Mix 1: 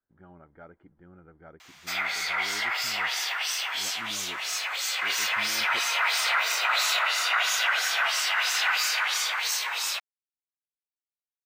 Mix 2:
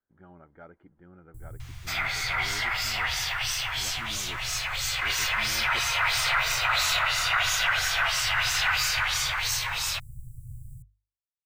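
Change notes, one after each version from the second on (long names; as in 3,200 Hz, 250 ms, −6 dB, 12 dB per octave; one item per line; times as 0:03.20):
first sound: unmuted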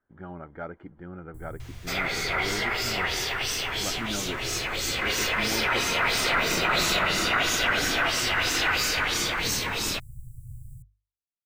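speech +11.5 dB
second sound: remove high-pass filter 760 Hz 24 dB per octave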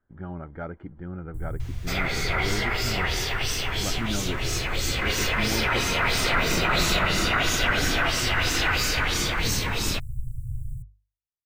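master: add low-shelf EQ 160 Hz +12 dB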